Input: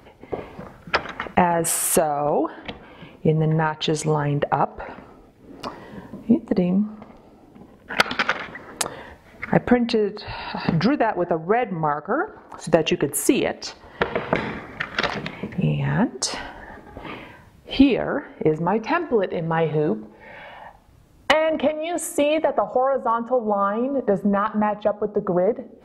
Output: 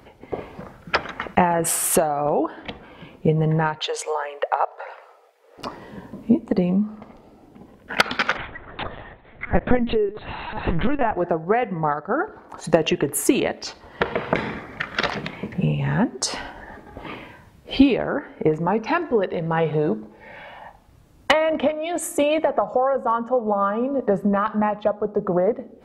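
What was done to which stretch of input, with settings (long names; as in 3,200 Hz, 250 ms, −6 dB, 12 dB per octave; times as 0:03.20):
0:03.79–0:05.58: elliptic high-pass filter 490 Hz, stop band 60 dB
0:08.37–0:11.16: linear-prediction vocoder at 8 kHz pitch kept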